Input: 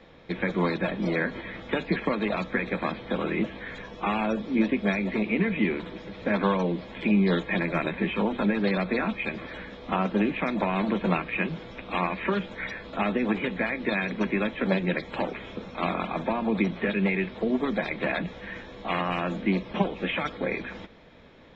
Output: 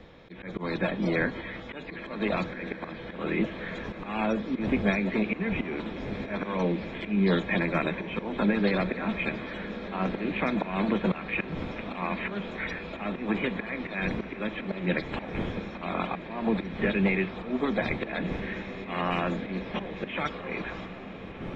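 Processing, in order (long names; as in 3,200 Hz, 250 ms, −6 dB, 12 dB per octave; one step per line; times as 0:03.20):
wind on the microphone 330 Hz −42 dBFS
volume swells 192 ms
feedback delay with all-pass diffusion 1,489 ms, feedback 61%, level −12 dB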